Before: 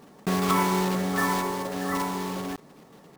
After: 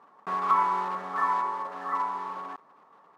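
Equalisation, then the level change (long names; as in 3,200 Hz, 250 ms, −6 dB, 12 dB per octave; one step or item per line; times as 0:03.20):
resonant band-pass 1,100 Hz, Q 3.5
+5.0 dB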